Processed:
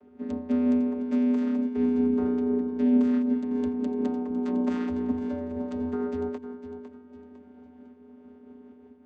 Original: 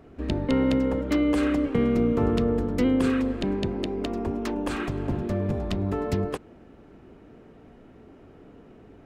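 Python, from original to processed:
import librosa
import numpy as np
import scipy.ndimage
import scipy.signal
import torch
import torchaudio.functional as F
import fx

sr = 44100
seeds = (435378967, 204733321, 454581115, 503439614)

p1 = fx.tracing_dist(x, sr, depth_ms=0.45)
p2 = fx.rider(p1, sr, range_db=3, speed_s=0.5)
p3 = fx.vocoder(p2, sr, bands=16, carrier='square', carrier_hz=82.6)
p4 = fx.lowpass(p3, sr, hz=5300.0, slope=12, at=(2.27, 2.93))
p5 = p4 + fx.echo_feedback(p4, sr, ms=504, feedback_pct=33, wet_db=-11.5, dry=0)
p6 = fx.am_noise(p5, sr, seeds[0], hz=5.7, depth_pct=65)
y = F.gain(torch.from_numpy(p6), 2.0).numpy()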